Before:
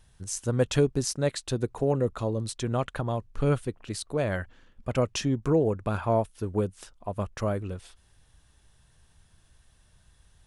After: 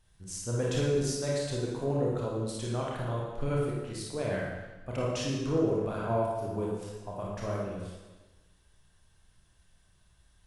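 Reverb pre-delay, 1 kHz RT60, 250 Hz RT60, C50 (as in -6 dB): 28 ms, 1.2 s, 1.3 s, -1.0 dB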